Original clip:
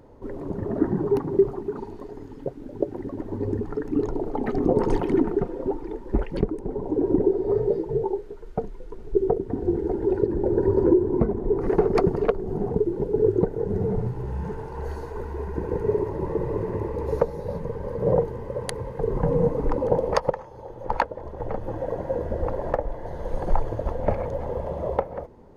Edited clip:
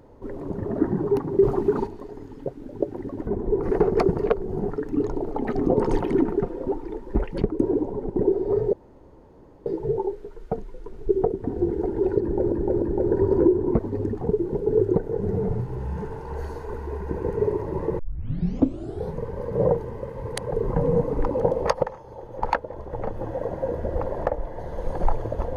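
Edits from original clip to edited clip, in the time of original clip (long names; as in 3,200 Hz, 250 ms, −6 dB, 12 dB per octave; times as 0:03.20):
0:01.43–0:01.87: clip gain +8.5 dB
0:03.27–0:03.69: swap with 0:11.25–0:12.68
0:06.59–0:07.15: reverse
0:07.72: splice in room tone 0.93 s
0:10.28–0:10.58: repeat, 3 plays
0:16.46: tape start 1.17 s
0:18.56–0:18.98: reverse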